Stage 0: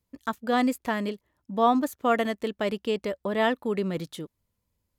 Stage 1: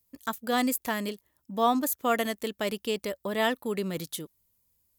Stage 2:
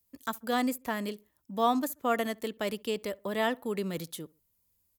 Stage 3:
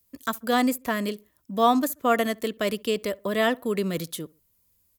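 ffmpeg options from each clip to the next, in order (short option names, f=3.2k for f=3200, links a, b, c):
-af "aemphasis=mode=production:type=75fm,volume=-2.5dB"
-filter_complex "[0:a]acrossover=split=130|2000[a][b][c];[c]alimiter=level_in=2dB:limit=-24dB:level=0:latency=1:release=479,volume=-2dB[d];[a][b][d]amix=inputs=3:normalize=0,asplit=2[e][f];[f]adelay=67,lowpass=f=1.5k:p=1,volume=-24dB,asplit=2[g][h];[h]adelay=67,lowpass=f=1.5k:p=1,volume=0.38[i];[e][g][i]amix=inputs=3:normalize=0,volume=-2dB"
-af "asuperstop=centerf=850:order=4:qfactor=7,volume=6.5dB"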